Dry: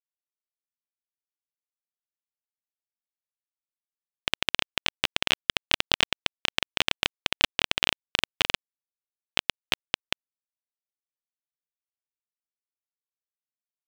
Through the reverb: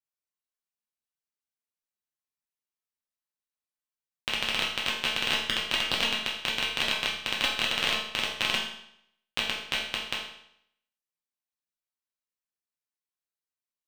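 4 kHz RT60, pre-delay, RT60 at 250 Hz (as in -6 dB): 0.65 s, 5 ms, 0.70 s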